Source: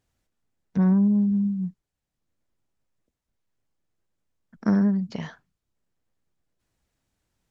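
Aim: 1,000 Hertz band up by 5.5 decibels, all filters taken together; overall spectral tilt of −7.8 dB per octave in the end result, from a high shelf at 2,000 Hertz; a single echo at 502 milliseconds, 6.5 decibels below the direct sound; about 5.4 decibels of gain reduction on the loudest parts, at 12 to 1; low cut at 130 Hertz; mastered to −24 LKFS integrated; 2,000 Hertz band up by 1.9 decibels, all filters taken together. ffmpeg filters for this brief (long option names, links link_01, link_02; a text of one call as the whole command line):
ffmpeg -i in.wav -af "highpass=130,equalizer=frequency=1000:width_type=o:gain=8,highshelf=frequency=2000:gain=-8.5,equalizer=frequency=2000:width_type=o:gain=3.5,acompressor=threshold=-22dB:ratio=12,aecho=1:1:502:0.473,volume=4.5dB" out.wav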